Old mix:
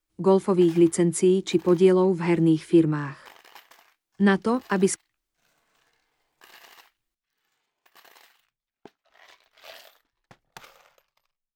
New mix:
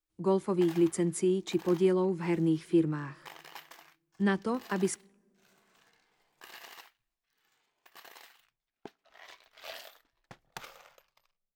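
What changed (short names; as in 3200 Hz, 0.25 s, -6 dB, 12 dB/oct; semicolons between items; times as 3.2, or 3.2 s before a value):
speech -10.0 dB; reverb: on, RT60 2.1 s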